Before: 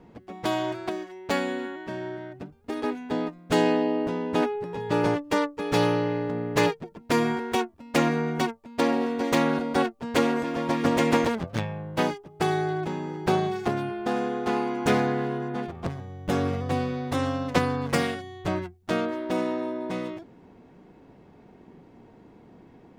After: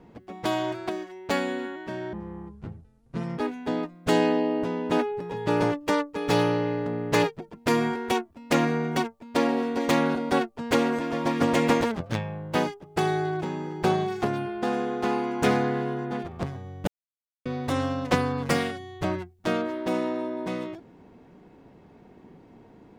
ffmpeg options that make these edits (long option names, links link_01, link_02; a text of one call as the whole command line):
ffmpeg -i in.wav -filter_complex "[0:a]asplit=5[link_01][link_02][link_03][link_04][link_05];[link_01]atrim=end=2.134[link_06];[link_02]atrim=start=2.13:end=2.82,asetpts=PTS-STARTPTS,asetrate=24255,aresample=44100,atrim=end_sample=55325,asetpts=PTS-STARTPTS[link_07];[link_03]atrim=start=2.816:end=16.31,asetpts=PTS-STARTPTS,afade=type=out:start_time=13.49:duration=0.004:curve=hsin[link_08];[link_04]atrim=start=16.31:end=16.89,asetpts=PTS-STARTPTS,volume=0[link_09];[link_05]atrim=start=16.89,asetpts=PTS-STARTPTS,afade=type=in:duration=0.004:curve=hsin[link_10];[link_06][link_07]acrossfade=duration=0.004:curve1=hsin:curve2=hsin[link_11];[link_08][link_09][link_10]concat=n=3:v=0:a=1[link_12];[link_11][link_12]acrossfade=duration=0.004:curve1=hsin:curve2=hsin" out.wav